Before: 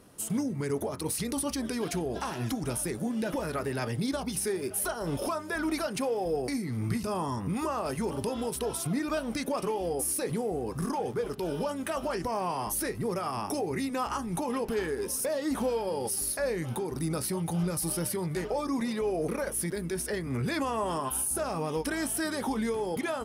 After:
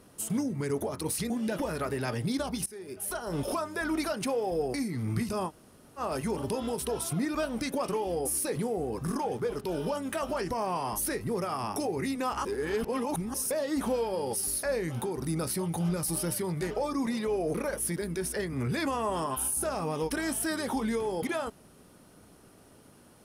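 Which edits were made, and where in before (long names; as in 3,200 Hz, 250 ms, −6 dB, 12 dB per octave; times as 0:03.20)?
0:01.30–0:03.04: remove
0:04.40–0:05.11: fade in, from −20.5 dB
0:07.22–0:07.73: fill with room tone, crossfade 0.06 s
0:14.19–0:15.08: reverse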